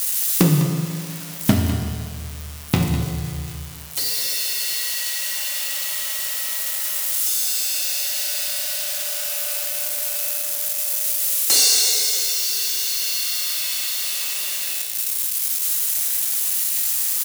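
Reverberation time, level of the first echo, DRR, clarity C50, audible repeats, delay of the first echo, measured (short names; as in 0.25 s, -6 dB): 2.1 s, -11.0 dB, 1.0 dB, 3.0 dB, 1, 0.202 s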